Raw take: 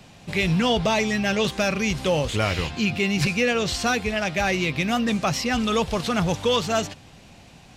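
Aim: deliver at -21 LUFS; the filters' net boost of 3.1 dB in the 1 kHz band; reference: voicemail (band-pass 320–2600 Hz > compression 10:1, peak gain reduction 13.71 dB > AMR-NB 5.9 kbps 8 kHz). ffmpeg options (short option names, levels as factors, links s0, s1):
-af "highpass=320,lowpass=2600,equalizer=f=1000:t=o:g=4.5,acompressor=threshold=0.0316:ratio=10,volume=5.62" -ar 8000 -c:a libopencore_amrnb -b:a 5900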